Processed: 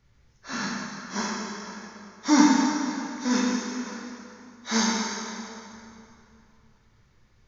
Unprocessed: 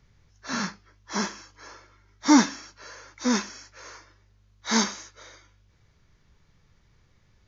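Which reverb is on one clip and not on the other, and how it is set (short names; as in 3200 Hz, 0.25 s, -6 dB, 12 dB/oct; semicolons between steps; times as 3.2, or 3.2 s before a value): plate-style reverb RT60 2.8 s, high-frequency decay 0.75×, DRR -4 dB; gain -4.5 dB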